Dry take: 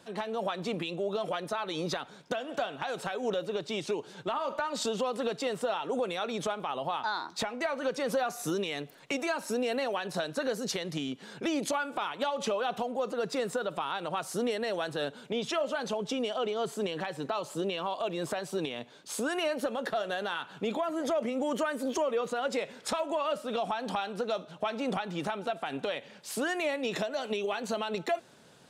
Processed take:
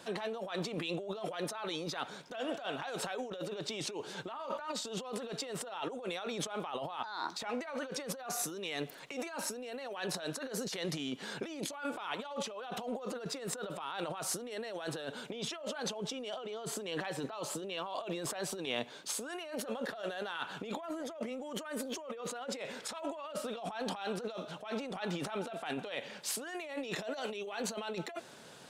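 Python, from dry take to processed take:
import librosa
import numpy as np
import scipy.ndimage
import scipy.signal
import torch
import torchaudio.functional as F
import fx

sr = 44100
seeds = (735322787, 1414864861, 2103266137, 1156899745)

y = fx.low_shelf(x, sr, hz=270.0, db=-6.5)
y = fx.over_compress(y, sr, threshold_db=-40.0, ratio=-1.0)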